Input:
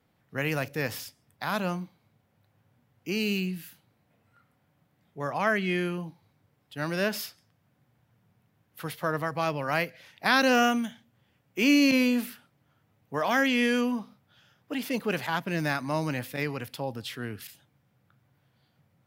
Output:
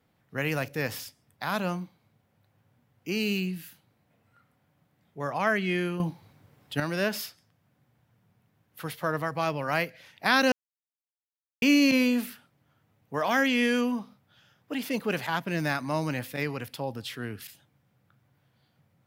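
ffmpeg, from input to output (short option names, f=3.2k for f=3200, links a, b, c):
-filter_complex "[0:a]asplit=5[a][b][c][d][e];[a]atrim=end=6.002[f];[b]atrim=start=5.998:end=6.802,asetpts=PTS-STARTPTS,volume=9.5dB[g];[c]atrim=start=6.798:end=10.52,asetpts=PTS-STARTPTS,afade=t=out:st=3.718:d=0.004:c=hsin[h];[d]atrim=start=10.52:end=11.62,asetpts=PTS-STARTPTS,volume=0[i];[e]atrim=start=11.62,asetpts=PTS-STARTPTS,afade=t=in:d=0.004:c=hsin[j];[f][g]acrossfade=d=0.004:c1=hsin:c2=hsin[k];[h][i][j]concat=n=3:v=0:a=1[l];[k][l]acrossfade=d=0.004:c1=hsin:c2=hsin"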